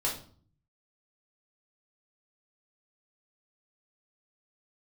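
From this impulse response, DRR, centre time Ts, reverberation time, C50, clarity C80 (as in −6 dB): −4.5 dB, 26 ms, 0.45 s, 7.0 dB, 12.5 dB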